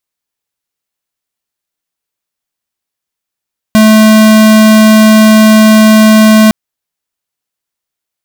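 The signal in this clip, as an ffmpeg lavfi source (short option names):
-f lavfi -i "aevalsrc='0.668*(2*lt(mod(217*t,1),0.5)-1)':d=2.76:s=44100"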